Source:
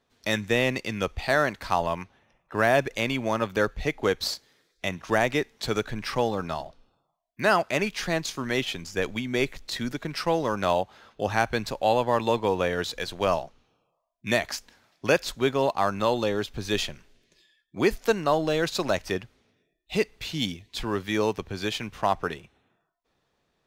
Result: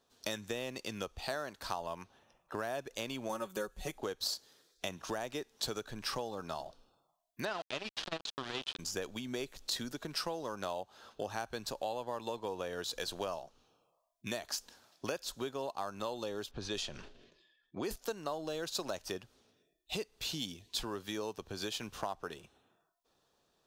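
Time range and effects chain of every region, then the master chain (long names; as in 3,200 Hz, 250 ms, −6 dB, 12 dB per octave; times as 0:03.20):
0:03.29–0:03.98: high shelf with overshoot 6,600 Hz +6.5 dB, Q 1.5 + comb filter 5.4 ms, depth 77%
0:07.45–0:08.79: centre clipping without the shift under −27.5 dBFS + low-pass with resonance 3,500 Hz, resonance Q 1.7 + saturating transformer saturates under 960 Hz
0:16.51–0:17.96: low-pass that shuts in the quiet parts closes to 2,400 Hz, open at −18.5 dBFS + level that may fall only so fast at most 70 dB per second
whole clip: parametric band 2,100 Hz −9.5 dB 0.47 octaves; downward compressor 6 to 1, threshold −34 dBFS; bass and treble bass −6 dB, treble +5 dB; level −1 dB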